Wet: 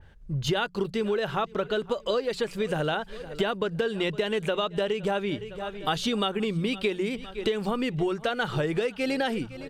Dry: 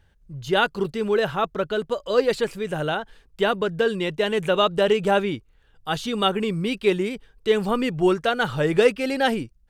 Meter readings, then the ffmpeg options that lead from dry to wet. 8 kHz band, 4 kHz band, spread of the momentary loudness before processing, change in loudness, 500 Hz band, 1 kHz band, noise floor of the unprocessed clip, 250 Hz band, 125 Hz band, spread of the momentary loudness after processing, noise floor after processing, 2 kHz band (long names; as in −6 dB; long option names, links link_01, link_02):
−2.5 dB, −3.5 dB, 10 LU, −5.5 dB, −6.0 dB, −6.0 dB, −59 dBFS, −4.0 dB, −2.0 dB, 4 LU, −46 dBFS, −5.5 dB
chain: -filter_complex "[0:a]aemphasis=mode=reproduction:type=cd,bandreject=frequency=60:width_type=h:width=6,bandreject=frequency=120:width_type=h:width=6,bandreject=frequency=180:width_type=h:width=6,aecho=1:1:511|1022|1533:0.0668|0.0274|0.0112,asplit=2[link_01][link_02];[link_02]alimiter=limit=-12.5dB:level=0:latency=1:release=149,volume=1.5dB[link_03];[link_01][link_03]amix=inputs=2:normalize=0,acompressor=threshold=-25dB:ratio=12,adynamicequalizer=threshold=0.00447:dfrequency=2600:dqfactor=0.7:tfrequency=2600:tqfactor=0.7:attack=5:release=100:ratio=0.375:range=3:mode=boostabove:tftype=highshelf,volume=1dB"